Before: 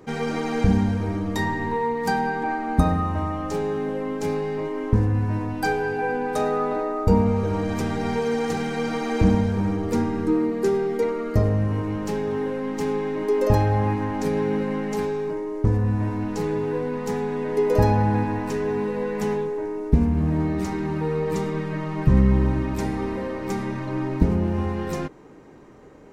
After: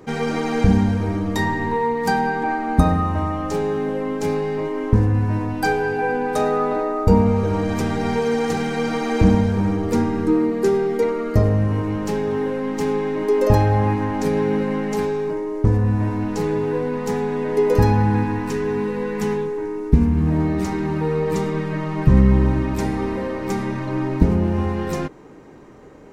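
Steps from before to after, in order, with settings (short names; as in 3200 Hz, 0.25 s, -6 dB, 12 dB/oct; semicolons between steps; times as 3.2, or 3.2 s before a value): 17.74–20.27 bell 630 Hz -13 dB 0.38 oct; gain +3.5 dB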